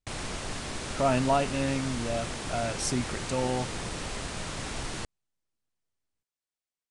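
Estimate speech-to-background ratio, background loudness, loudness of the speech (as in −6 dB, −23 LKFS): 5.5 dB, −35.5 LKFS, −30.0 LKFS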